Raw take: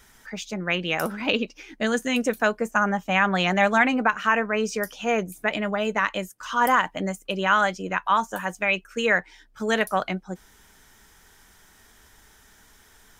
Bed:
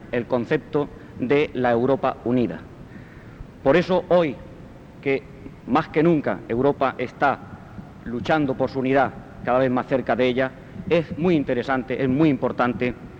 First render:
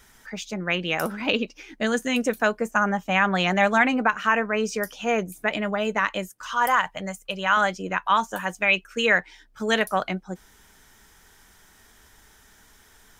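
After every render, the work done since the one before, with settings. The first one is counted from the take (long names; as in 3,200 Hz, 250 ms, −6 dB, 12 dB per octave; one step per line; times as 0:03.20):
0:06.46–0:07.57: parametric band 300 Hz −14.5 dB 0.87 octaves
0:08.09–0:09.80: dynamic equaliser 3,300 Hz, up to +5 dB, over −38 dBFS, Q 1.1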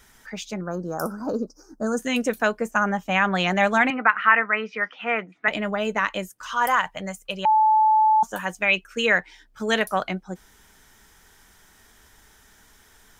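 0:00.61–0:01.99: elliptic band-stop filter 1,400–5,100 Hz
0:03.90–0:05.48: loudspeaker in its box 300–3,100 Hz, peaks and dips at 390 Hz −7 dB, 570 Hz −6 dB, 1,300 Hz +7 dB, 2,000 Hz +10 dB
0:07.45–0:08.23: beep over 868 Hz −14 dBFS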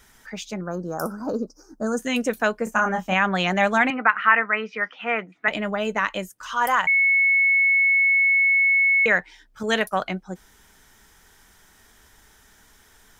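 0:02.64–0:03.14: double-tracking delay 27 ms −4.5 dB
0:06.87–0:09.06: beep over 2,200 Hz −15 dBFS
0:09.63–0:10.06: downward expander −31 dBFS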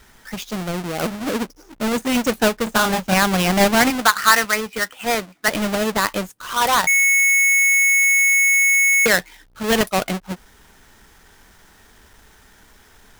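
each half-wave held at its own peak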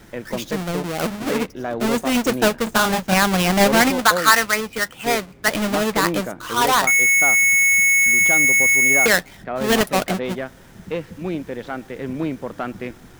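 mix in bed −7 dB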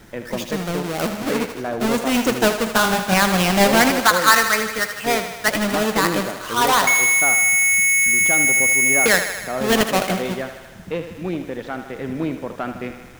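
feedback echo with a high-pass in the loop 78 ms, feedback 70%, high-pass 320 Hz, level −9 dB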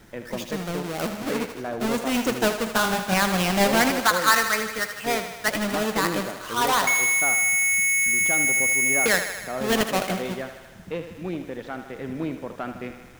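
level −5 dB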